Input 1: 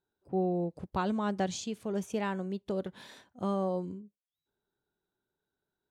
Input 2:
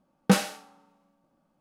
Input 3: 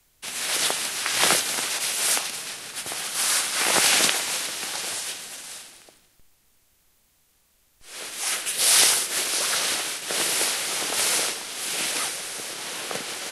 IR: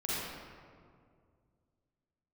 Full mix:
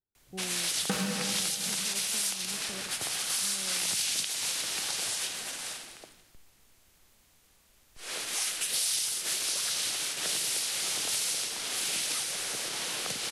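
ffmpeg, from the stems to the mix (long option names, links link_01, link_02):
-filter_complex "[0:a]aemphasis=mode=reproduction:type=bsi,volume=-16dB[link_01];[1:a]tiltshelf=frequency=970:gain=-4.5,adelay=600,volume=-3dB,asplit=2[link_02][link_03];[link_03]volume=-4dB[link_04];[2:a]highshelf=frequency=9500:gain=-5.5,acrossover=split=160|3000[link_05][link_06][link_07];[link_06]acompressor=threshold=-41dB:ratio=4[link_08];[link_05][link_08][link_07]amix=inputs=3:normalize=0,adelay=150,volume=2dB[link_09];[3:a]atrim=start_sample=2205[link_10];[link_04][link_10]afir=irnorm=-1:irlink=0[link_11];[link_01][link_02][link_09][link_11]amix=inputs=4:normalize=0,acompressor=threshold=-28dB:ratio=5"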